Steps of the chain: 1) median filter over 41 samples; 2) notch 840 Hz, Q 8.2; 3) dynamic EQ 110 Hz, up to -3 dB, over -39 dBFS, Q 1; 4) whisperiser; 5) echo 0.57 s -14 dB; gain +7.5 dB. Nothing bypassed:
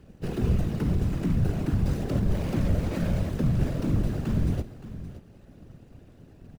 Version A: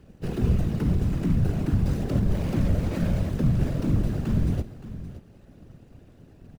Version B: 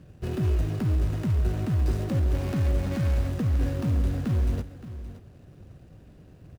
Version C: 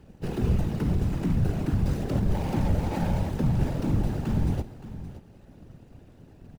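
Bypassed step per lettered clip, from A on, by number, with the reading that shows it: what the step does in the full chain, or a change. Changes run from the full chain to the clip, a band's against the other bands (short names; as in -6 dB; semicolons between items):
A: 3, 125 Hz band +2.0 dB; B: 4, 250 Hz band -3.0 dB; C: 2, 1 kHz band +5.0 dB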